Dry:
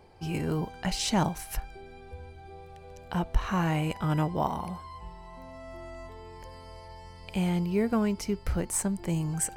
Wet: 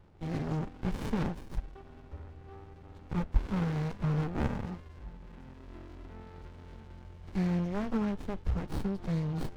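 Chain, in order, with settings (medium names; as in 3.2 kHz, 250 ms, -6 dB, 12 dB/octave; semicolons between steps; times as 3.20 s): knee-point frequency compression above 1.2 kHz 1.5:1; sliding maximum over 65 samples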